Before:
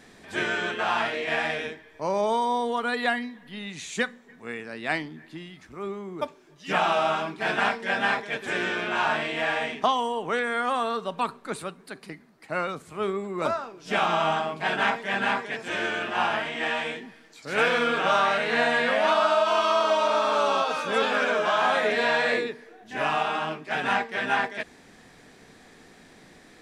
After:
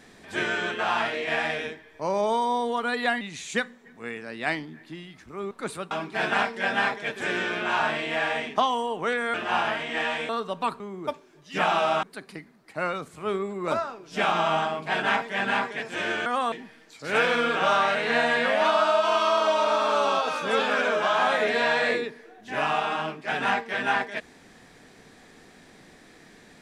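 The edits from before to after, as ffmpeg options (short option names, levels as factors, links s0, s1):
-filter_complex "[0:a]asplit=10[s0][s1][s2][s3][s4][s5][s6][s7][s8][s9];[s0]atrim=end=3.212[s10];[s1]atrim=start=3.638:end=5.942[s11];[s2]atrim=start=11.368:end=11.772[s12];[s3]atrim=start=7.168:end=10.602[s13];[s4]atrim=start=15.998:end=16.952[s14];[s5]atrim=start=10.858:end=11.372[s15];[s6]atrim=start=5.938:end=7.172[s16];[s7]atrim=start=11.768:end=16.002[s17];[s8]atrim=start=10.598:end=10.862[s18];[s9]atrim=start=16.948[s19];[s10][s11]acrossfade=d=0.004:c1=hsin:c2=hsin[s20];[s20][s12]acrossfade=d=0.004:c1=hsin:c2=hsin[s21];[s21][s13]acrossfade=d=0.004:c1=hsin:c2=hsin[s22];[s22][s14]acrossfade=d=0.004:c1=hsin:c2=hsin[s23];[s23][s15]acrossfade=d=0.004:c1=hsin:c2=hsin[s24];[s24][s16]acrossfade=d=0.004:c1=hsin:c2=hsin[s25];[s25][s17]acrossfade=d=0.004:c1=hsin:c2=hsin[s26];[s26][s18]acrossfade=d=0.004:c1=hsin:c2=hsin[s27];[s27][s19]acrossfade=d=0.004:c1=hsin:c2=hsin"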